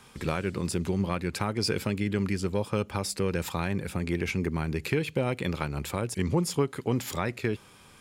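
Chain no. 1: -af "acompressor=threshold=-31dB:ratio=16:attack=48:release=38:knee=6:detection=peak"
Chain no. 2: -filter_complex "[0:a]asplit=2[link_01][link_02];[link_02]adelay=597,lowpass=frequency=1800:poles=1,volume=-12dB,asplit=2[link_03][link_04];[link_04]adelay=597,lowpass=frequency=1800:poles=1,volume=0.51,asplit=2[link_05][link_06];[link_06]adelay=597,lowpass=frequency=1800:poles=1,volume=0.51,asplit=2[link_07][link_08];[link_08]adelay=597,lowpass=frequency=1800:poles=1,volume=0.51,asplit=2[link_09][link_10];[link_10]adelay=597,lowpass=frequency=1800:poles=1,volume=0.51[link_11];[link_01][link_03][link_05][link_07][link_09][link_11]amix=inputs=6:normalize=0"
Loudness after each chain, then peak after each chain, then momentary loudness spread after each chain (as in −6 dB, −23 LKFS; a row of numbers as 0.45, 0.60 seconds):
−32.0, −30.0 LKFS; −12.0, −11.5 dBFS; 2, 4 LU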